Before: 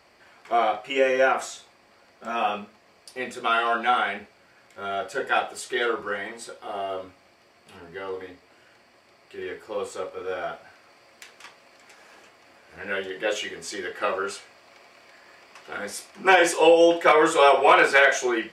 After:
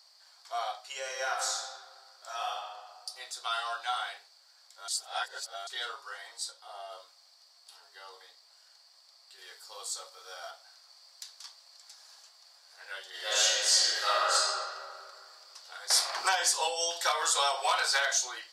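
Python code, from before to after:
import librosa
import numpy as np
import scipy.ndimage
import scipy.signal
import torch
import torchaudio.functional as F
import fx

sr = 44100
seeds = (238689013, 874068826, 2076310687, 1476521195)

y = fx.reverb_throw(x, sr, start_s=0.99, length_s=1.57, rt60_s=1.6, drr_db=1.0)
y = fx.high_shelf(y, sr, hz=4400.0, db=-5.0, at=(6.51, 6.92))
y = fx.high_shelf(y, sr, hz=5100.0, db=6.5, at=(9.38, 10.51))
y = fx.reverb_throw(y, sr, start_s=13.09, length_s=1.25, rt60_s=2.2, drr_db=-12.0)
y = fx.band_squash(y, sr, depth_pct=100, at=(15.9, 18.13))
y = fx.edit(y, sr, fx.reverse_span(start_s=4.88, length_s=0.79), tone=tone)
y = scipy.signal.sosfilt(scipy.signal.butter(4, 730.0, 'highpass', fs=sr, output='sos'), y)
y = fx.high_shelf_res(y, sr, hz=3300.0, db=10.0, q=3.0)
y = y * librosa.db_to_amplitude(-9.0)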